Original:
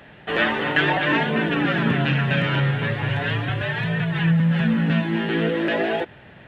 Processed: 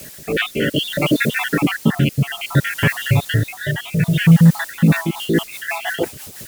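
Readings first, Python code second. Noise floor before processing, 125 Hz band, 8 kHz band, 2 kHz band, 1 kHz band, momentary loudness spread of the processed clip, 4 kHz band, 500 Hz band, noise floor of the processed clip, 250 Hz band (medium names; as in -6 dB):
-46 dBFS, +5.5 dB, no reading, +0.5 dB, -2.0 dB, 11 LU, +4.0 dB, +1.0 dB, -39 dBFS, +4.5 dB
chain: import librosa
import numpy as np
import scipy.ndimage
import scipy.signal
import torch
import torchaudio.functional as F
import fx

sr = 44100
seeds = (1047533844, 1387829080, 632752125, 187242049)

y = fx.spec_dropout(x, sr, seeds[0], share_pct=69)
y = fx.low_shelf(y, sr, hz=370.0, db=4.5)
y = fx.quant_dither(y, sr, seeds[1], bits=8, dither='triangular')
y = fx.rotary_switch(y, sr, hz=0.6, then_hz=6.0, switch_at_s=4.44)
y = fx.high_shelf(y, sr, hz=4200.0, db=9.5)
y = F.gain(torch.from_numpy(y), 7.5).numpy()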